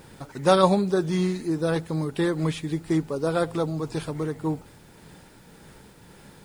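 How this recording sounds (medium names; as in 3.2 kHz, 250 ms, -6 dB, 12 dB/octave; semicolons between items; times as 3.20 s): tremolo triangle 1.8 Hz, depth 40%; a quantiser's noise floor 10-bit, dither none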